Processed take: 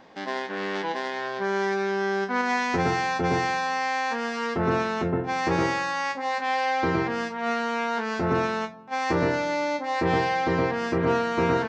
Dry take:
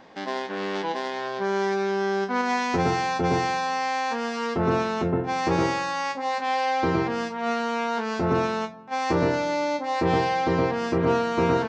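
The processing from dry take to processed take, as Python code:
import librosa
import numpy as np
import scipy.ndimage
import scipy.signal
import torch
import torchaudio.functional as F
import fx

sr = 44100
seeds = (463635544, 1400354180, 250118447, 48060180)

y = fx.dynamic_eq(x, sr, hz=1800.0, q=1.9, threshold_db=-41.0, ratio=4.0, max_db=5)
y = F.gain(torch.from_numpy(y), -1.5).numpy()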